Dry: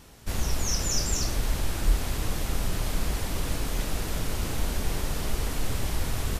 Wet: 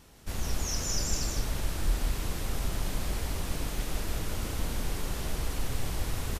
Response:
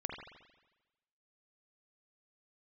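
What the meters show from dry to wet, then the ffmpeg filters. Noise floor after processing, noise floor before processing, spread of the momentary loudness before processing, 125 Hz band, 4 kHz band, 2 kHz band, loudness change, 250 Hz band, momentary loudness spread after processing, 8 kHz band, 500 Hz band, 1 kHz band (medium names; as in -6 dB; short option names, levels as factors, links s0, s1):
-37 dBFS, -34 dBFS, 5 LU, -3.5 dB, -3.5 dB, -4.0 dB, -3.5 dB, -3.5 dB, 5 LU, -4.0 dB, -4.0 dB, -3.5 dB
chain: -af "aecho=1:1:156:0.596,volume=0.562"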